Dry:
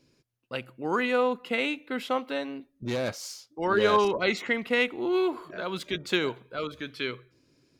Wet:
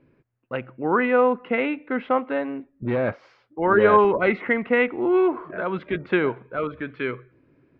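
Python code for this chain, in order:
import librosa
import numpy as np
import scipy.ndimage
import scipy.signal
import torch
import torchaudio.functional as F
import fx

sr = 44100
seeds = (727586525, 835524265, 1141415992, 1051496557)

y = scipy.signal.sosfilt(scipy.signal.butter(4, 2100.0, 'lowpass', fs=sr, output='sos'), x)
y = y * 10.0 ** (6.5 / 20.0)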